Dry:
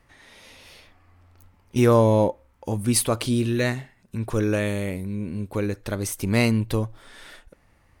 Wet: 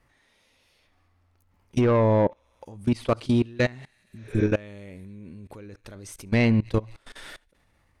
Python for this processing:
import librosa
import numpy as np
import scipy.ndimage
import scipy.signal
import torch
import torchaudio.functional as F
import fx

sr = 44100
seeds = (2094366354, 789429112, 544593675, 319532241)

p1 = x + fx.echo_wet_highpass(x, sr, ms=68, feedback_pct=81, hz=1700.0, wet_db=-23, dry=0)
p2 = fx.env_lowpass_down(p1, sr, base_hz=2500.0, full_db=-15.5)
p3 = 10.0 ** (-14.0 / 20.0) * np.tanh(p2 / 10.0 ** (-14.0 / 20.0))
p4 = fx.level_steps(p3, sr, step_db=23)
p5 = fx.spec_repair(p4, sr, seeds[0], start_s=4.11, length_s=0.3, low_hz=390.0, high_hz=7100.0, source='both')
y = p5 * librosa.db_to_amplitude(4.0)